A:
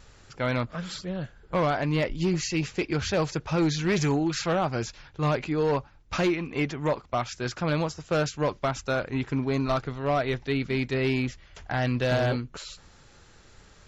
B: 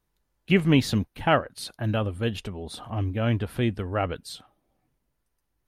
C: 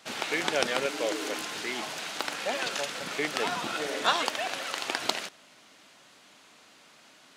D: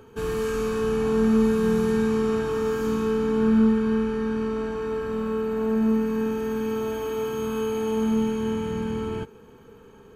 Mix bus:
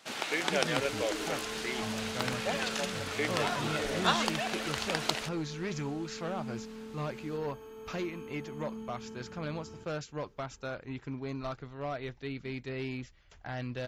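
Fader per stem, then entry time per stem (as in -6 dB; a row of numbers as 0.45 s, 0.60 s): -11.5 dB, -18.5 dB, -2.5 dB, -19.5 dB; 1.75 s, 0.00 s, 0.00 s, 0.60 s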